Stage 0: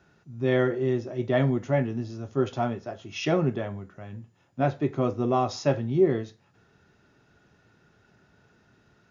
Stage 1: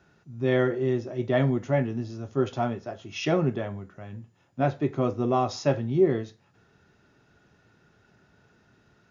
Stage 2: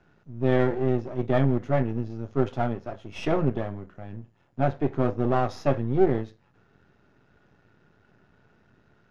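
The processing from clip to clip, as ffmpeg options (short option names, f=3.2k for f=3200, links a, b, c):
-af anull
-af "aeval=exprs='if(lt(val(0),0),0.251*val(0),val(0))':c=same,aemphasis=mode=reproduction:type=75fm,volume=3dB"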